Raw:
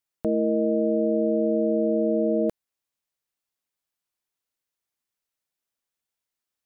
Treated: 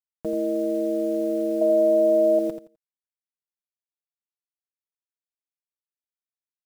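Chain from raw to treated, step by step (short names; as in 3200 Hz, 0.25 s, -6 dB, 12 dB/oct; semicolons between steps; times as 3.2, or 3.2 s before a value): comb 6.3 ms, depth 54%; bit-crush 7-bit; 1.61–2.39 small resonant body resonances 660/960 Hz, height 17 dB, ringing for 65 ms; on a send: feedback echo 85 ms, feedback 20%, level -9 dB; on the sum: gain -6 dB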